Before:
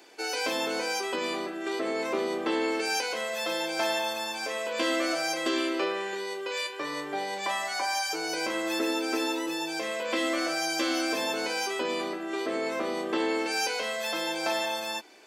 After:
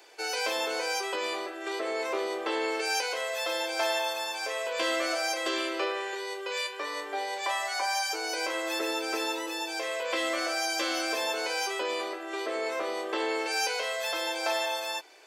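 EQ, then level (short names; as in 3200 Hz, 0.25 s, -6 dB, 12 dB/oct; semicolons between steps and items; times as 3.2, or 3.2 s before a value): HPF 390 Hz 24 dB/oct; 0.0 dB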